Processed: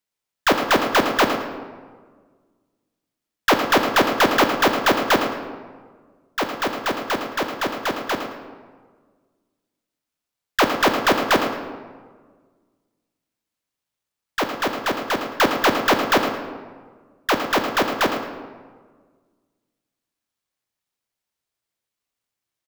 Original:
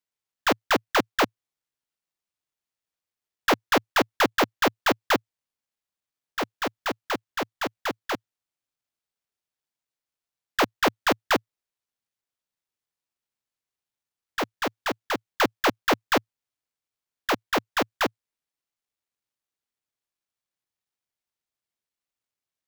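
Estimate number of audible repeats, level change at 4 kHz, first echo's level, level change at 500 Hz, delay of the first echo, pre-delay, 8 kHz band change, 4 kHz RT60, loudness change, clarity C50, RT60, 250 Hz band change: 1, +5.5 dB, −10.0 dB, +6.0 dB, 109 ms, 14 ms, +5.0 dB, 0.90 s, +5.5 dB, 6.0 dB, 1.6 s, +6.0 dB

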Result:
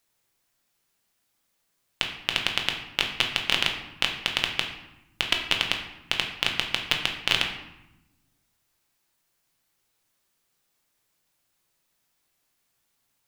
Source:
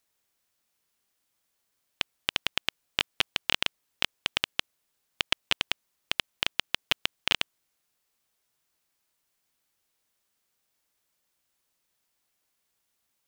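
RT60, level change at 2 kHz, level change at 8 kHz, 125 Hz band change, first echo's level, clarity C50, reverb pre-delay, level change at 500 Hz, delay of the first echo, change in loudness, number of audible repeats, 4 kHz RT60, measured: 0.95 s, +4.0 dB, +3.5 dB, +7.0 dB, no echo audible, 6.5 dB, 3 ms, +4.0 dB, no echo audible, +3.5 dB, no echo audible, 0.65 s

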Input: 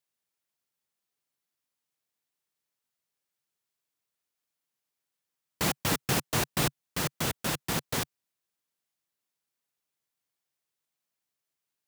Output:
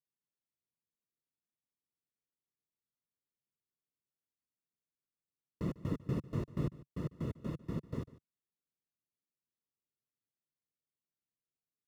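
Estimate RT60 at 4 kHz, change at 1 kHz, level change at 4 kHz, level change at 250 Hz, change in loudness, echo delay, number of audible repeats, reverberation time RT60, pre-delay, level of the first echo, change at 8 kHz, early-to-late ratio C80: no reverb audible, −19.0 dB, −29.0 dB, −4.0 dB, −10.0 dB, 148 ms, 1, no reverb audible, no reverb audible, −19.0 dB, below −30 dB, no reverb audible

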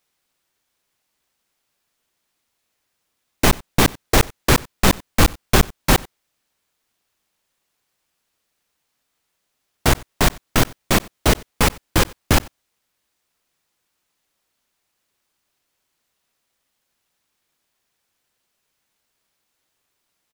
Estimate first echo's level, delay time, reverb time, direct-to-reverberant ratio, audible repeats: −23.5 dB, 92 ms, no reverb audible, no reverb audible, 1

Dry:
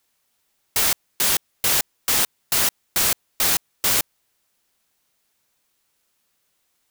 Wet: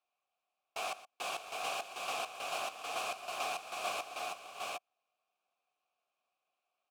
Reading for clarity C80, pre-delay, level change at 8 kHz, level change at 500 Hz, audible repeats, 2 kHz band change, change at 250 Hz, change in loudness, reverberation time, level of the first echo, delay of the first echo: no reverb audible, no reverb audible, −24.5 dB, −6.5 dB, 5, −12.5 dB, −20.0 dB, −19.5 dB, no reverb audible, −16.0 dB, 121 ms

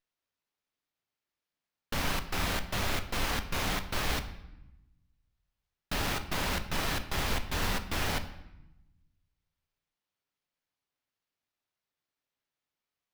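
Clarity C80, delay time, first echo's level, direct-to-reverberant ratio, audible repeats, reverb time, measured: 14.5 dB, no echo audible, no echo audible, 8.0 dB, no echo audible, 0.90 s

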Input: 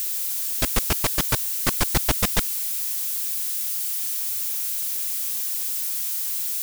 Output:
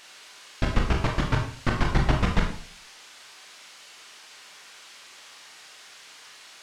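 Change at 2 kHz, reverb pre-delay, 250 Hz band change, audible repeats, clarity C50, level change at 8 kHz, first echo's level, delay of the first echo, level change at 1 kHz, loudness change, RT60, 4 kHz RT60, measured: −1.0 dB, 20 ms, +3.0 dB, no echo audible, 6.0 dB, −20.5 dB, no echo audible, no echo audible, +0.5 dB, −4.0 dB, 0.50 s, 0.45 s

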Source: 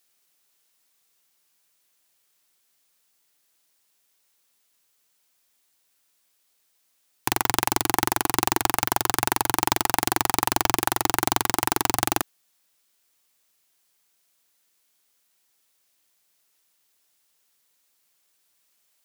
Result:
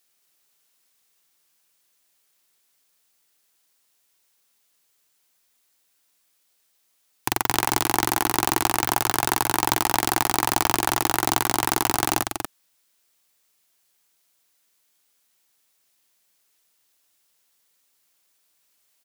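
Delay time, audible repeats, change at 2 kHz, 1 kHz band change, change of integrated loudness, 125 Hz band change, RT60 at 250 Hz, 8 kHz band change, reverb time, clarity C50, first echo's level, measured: 238 ms, 1, +1.0 dB, +1.0 dB, +1.0 dB, +1.0 dB, no reverb audible, +1.0 dB, no reverb audible, no reverb audible, −6.0 dB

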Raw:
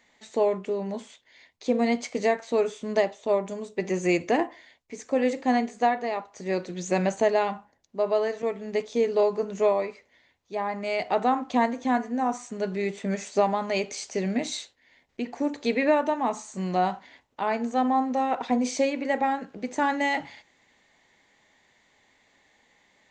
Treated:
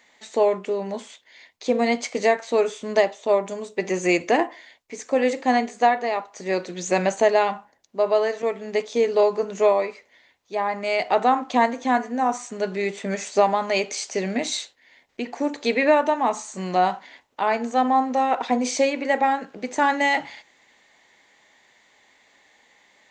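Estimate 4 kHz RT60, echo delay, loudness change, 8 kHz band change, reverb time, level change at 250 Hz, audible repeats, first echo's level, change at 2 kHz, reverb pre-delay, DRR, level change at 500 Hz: no reverb audible, no echo audible, +4.0 dB, +6.0 dB, no reverb audible, +1.0 dB, no echo audible, no echo audible, +6.0 dB, no reverb audible, no reverb audible, +4.0 dB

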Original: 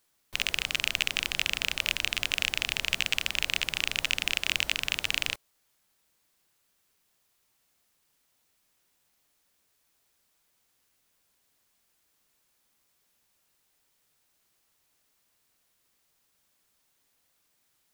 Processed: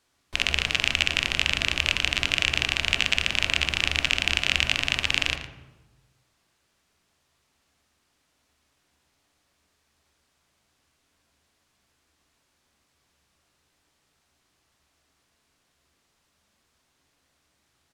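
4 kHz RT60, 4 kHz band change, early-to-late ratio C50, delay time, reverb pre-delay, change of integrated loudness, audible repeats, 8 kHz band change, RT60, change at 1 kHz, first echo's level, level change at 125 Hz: 0.75 s, +4.5 dB, 7.5 dB, 113 ms, 3 ms, +5.0 dB, 1, +1.5 dB, 1.1 s, +7.0 dB, −12.5 dB, +12.0 dB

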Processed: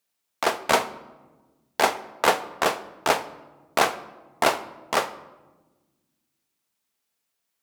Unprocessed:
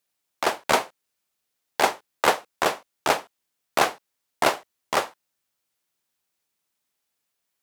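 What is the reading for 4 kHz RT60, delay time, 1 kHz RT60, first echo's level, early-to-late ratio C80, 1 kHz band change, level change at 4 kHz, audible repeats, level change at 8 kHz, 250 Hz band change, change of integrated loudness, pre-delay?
0.70 s, no echo audible, 1.1 s, no echo audible, 17.0 dB, 0.0 dB, 0.0 dB, no echo audible, 0.0 dB, +0.5 dB, 0.0 dB, 4 ms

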